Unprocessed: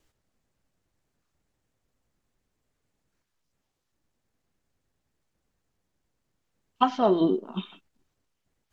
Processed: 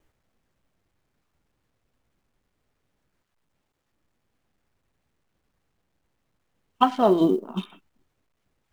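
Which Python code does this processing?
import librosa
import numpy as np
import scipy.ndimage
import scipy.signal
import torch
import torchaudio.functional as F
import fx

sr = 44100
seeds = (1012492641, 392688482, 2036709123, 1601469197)

y = fx.wiener(x, sr, points=9)
y = fx.quant_companded(y, sr, bits=8)
y = y * librosa.db_to_amplitude(3.0)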